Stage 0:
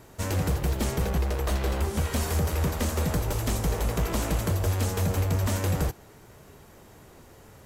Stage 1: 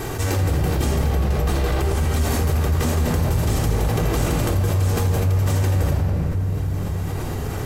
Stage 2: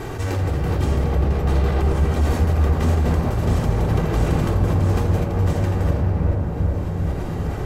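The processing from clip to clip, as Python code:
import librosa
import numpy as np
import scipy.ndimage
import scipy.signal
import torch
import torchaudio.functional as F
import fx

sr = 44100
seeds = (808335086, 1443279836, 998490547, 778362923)

y1 = fx.room_shoebox(x, sr, seeds[0], volume_m3=3900.0, walls='mixed', distance_m=3.7)
y1 = fx.env_flatten(y1, sr, amount_pct=70)
y1 = y1 * librosa.db_to_amplitude(-5.5)
y2 = fx.lowpass(y1, sr, hz=3000.0, slope=6)
y2 = fx.echo_wet_lowpass(y2, sr, ms=399, feedback_pct=71, hz=1400.0, wet_db=-4.0)
y2 = y2 * librosa.db_to_amplitude(-1.5)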